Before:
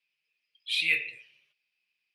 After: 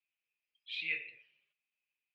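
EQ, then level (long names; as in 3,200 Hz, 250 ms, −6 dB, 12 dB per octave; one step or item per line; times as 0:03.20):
band-pass filter 130–3,500 Hz
high-frequency loss of the air 63 metres
−8.5 dB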